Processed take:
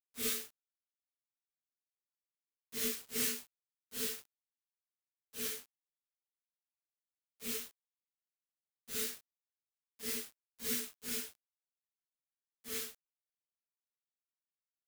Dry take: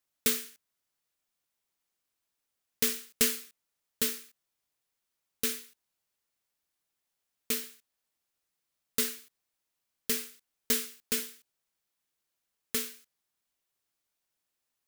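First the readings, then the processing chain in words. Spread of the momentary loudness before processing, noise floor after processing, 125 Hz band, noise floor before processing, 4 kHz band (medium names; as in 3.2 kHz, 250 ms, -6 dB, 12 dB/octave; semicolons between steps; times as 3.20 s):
14 LU, under -85 dBFS, -6.5 dB, -84 dBFS, -6.5 dB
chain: phase randomisation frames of 200 ms; small samples zeroed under -41 dBFS; trim -6.5 dB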